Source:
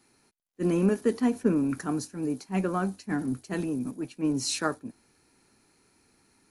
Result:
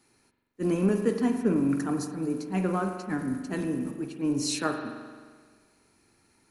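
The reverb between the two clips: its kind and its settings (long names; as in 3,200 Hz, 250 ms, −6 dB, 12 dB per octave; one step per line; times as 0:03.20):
spring reverb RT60 1.6 s, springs 43 ms, chirp 70 ms, DRR 5 dB
level −1 dB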